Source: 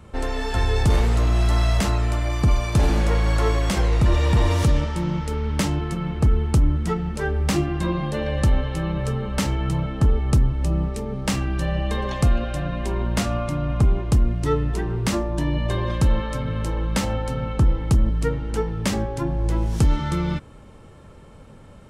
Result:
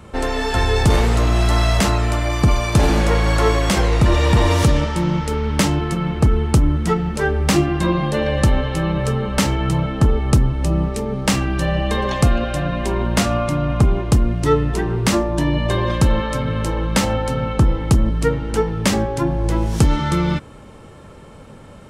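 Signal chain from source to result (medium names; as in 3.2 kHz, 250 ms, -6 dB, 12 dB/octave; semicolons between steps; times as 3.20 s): bass shelf 100 Hz -7 dB; trim +7 dB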